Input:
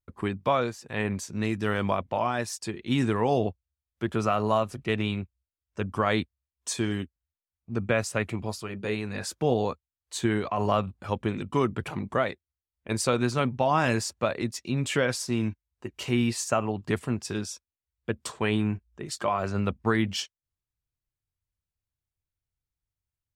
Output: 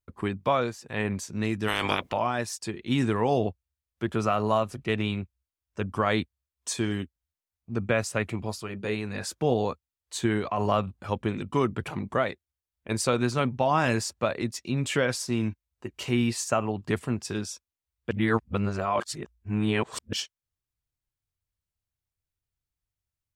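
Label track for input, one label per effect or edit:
1.670000	2.120000	spectral limiter ceiling under each frame's peak by 25 dB
18.110000	20.130000	reverse

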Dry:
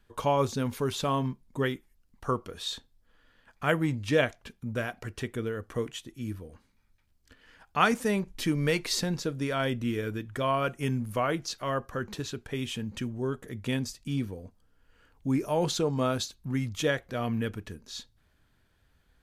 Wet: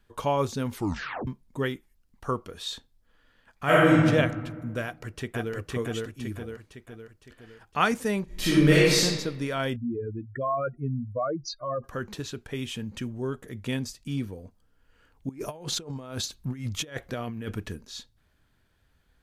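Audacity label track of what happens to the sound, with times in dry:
0.730000	0.730000	tape stop 0.54 s
3.640000	4.050000	reverb throw, RT60 1.6 s, DRR -8.5 dB
4.830000	5.540000	echo throw 0.51 s, feedback 50%, level 0 dB
8.250000	9.010000	reverb throw, RT60 1.2 s, DRR -8.5 dB
9.760000	11.840000	spectral contrast raised exponent 2.9
15.290000	17.850000	negative-ratio compressor -33 dBFS, ratio -0.5

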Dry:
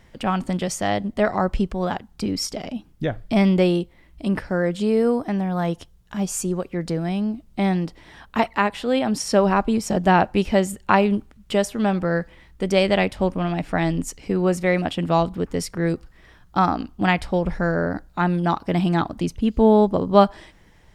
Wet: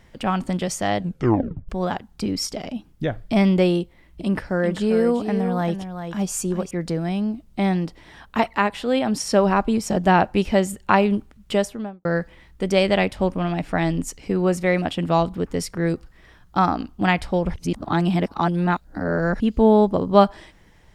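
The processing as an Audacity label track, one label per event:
0.980000	0.980000	tape stop 0.71 s
3.800000	6.710000	echo 0.393 s -8.5 dB
11.540000	12.050000	studio fade out
17.540000	19.400000	reverse

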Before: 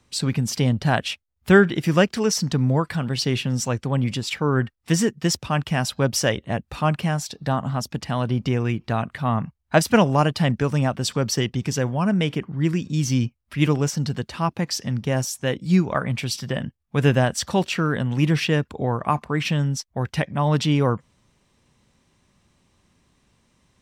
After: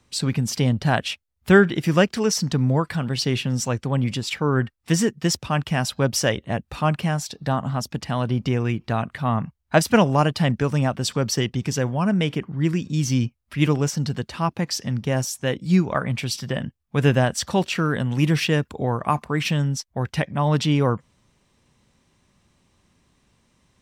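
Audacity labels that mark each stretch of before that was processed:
17.750000	19.620000	high shelf 7500 Hz +7 dB

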